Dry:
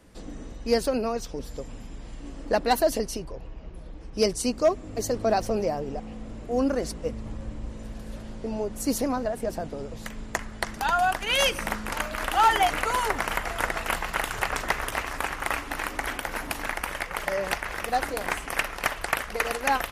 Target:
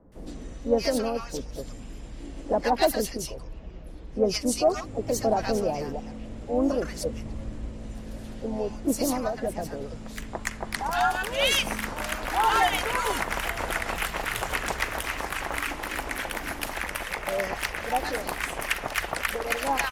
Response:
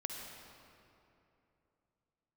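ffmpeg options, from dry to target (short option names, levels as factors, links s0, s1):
-filter_complex "[0:a]asplit=2[s0][s1];[s1]asetrate=52444,aresample=44100,atempo=0.840896,volume=0.355[s2];[s0][s2]amix=inputs=2:normalize=0,acrossover=split=1100[s3][s4];[s4]adelay=120[s5];[s3][s5]amix=inputs=2:normalize=0"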